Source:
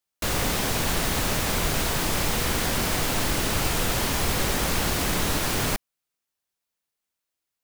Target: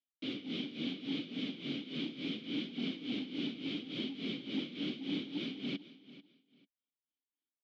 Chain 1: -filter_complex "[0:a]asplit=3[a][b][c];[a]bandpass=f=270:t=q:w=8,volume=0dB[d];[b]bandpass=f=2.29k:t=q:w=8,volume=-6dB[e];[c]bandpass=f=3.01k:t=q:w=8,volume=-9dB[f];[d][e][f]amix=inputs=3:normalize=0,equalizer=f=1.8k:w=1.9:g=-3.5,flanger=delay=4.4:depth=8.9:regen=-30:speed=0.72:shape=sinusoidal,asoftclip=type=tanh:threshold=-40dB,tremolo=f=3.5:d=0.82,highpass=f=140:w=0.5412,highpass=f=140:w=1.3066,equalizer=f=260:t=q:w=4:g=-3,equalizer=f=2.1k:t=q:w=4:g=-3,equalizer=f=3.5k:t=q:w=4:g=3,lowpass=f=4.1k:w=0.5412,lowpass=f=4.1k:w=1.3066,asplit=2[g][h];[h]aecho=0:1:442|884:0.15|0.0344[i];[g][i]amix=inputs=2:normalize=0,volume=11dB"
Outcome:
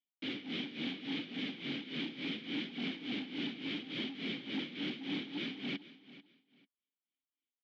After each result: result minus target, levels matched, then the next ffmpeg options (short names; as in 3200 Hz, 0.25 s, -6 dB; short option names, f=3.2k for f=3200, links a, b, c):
soft clip: distortion +9 dB; 2000 Hz band +5.0 dB
-filter_complex "[0:a]asplit=3[a][b][c];[a]bandpass=f=270:t=q:w=8,volume=0dB[d];[b]bandpass=f=2.29k:t=q:w=8,volume=-6dB[e];[c]bandpass=f=3.01k:t=q:w=8,volume=-9dB[f];[d][e][f]amix=inputs=3:normalize=0,equalizer=f=1.8k:w=1.9:g=-3.5,flanger=delay=4.4:depth=8.9:regen=-30:speed=0.72:shape=sinusoidal,asoftclip=type=tanh:threshold=-34dB,tremolo=f=3.5:d=0.82,highpass=f=140:w=0.5412,highpass=f=140:w=1.3066,equalizer=f=260:t=q:w=4:g=-3,equalizer=f=2.1k:t=q:w=4:g=-3,equalizer=f=3.5k:t=q:w=4:g=3,lowpass=f=4.1k:w=0.5412,lowpass=f=4.1k:w=1.3066,asplit=2[g][h];[h]aecho=0:1:442|884:0.15|0.0344[i];[g][i]amix=inputs=2:normalize=0,volume=11dB"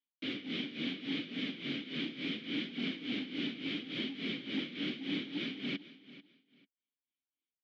2000 Hz band +4.5 dB
-filter_complex "[0:a]asplit=3[a][b][c];[a]bandpass=f=270:t=q:w=8,volume=0dB[d];[b]bandpass=f=2.29k:t=q:w=8,volume=-6dB[e];[c]bandpass=f=3.01k:t=q:w=8,volume=-9dB[f];[d][e][f]amix=inputs=3:normalize=0,equalizer=f=1.8k:w=1.9:g=-15,flanger=delay=4.4:depth=8.9:regen=-30:speed=0.72:shape=sinusoidal,asoftclip=type=tanh:threshold=-34dB,tremolo=f=3.5:d=0.82,highpass=f=140:w=0.5412,highpass=f=140:w=1.3066,equalizer=f=260:t=q:w=4:g=-3,equalizer=f=2.1k:t=q:w=4:g=-3,equalizer=f=3.5k:t=q:w=4:g=3,lowpass=f=4.1k:w=0.5412,lowpass=f=4.1k:w=1.3066,asplit=2[g][h];[h]aecho=0:1:442|884:0.15|0.0344[i];[g][i]amix=inputs=2:normalize=0,volume=11dB"